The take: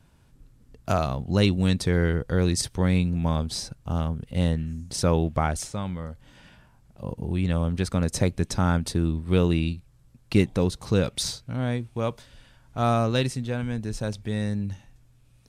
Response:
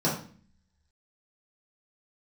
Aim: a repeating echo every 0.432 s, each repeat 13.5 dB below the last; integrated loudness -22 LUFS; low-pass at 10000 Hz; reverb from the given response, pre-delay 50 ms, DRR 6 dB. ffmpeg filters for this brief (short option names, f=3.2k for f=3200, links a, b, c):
-filter_complex "[0:a]lowpass=10k,aecho=1:1:432|864:0.211|0.0444,asplit=2[a][b];[1:a]atrim=start_sample=2205,adelay=50[c];[b][c]afir=irnorm=-1:irlink=0,volume=-18dB[d];[a][d]amix=inputs=2:normalize=0,volume=-0.5dB"